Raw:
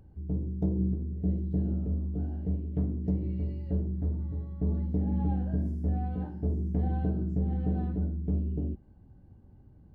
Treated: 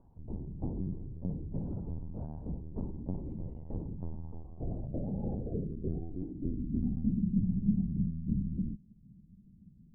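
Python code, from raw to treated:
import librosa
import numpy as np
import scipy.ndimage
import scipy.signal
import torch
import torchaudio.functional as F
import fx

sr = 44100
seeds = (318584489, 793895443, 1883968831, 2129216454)

y = fx.lpc_vocoder(x, sr, seeds[0], excitation='pitch_kept', order=10)
y = fx.filter_sweep_lowpass(y, sr, from_hz=930.0, to_hz=200.0, start_s=4.07, end_s=7.22, q=5.3)
y = y * librosa.db_to_amplitude(-8.0)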